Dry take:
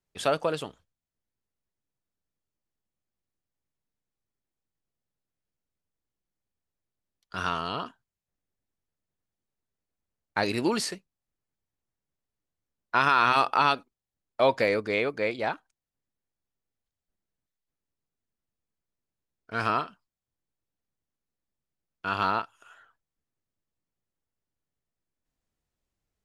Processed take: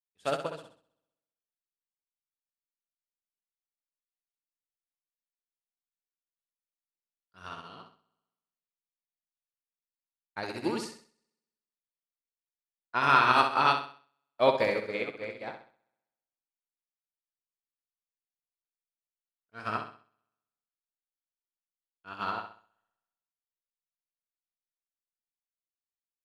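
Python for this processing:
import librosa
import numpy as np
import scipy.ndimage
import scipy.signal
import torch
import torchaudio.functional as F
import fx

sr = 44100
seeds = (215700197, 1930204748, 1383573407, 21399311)

y = fx.room_flutter(x, sr, wall_m=11.1, rt60_s=1.1)
y = fx.upward_expand(y, sr, threshold_db=-41.0, expansion=2.5)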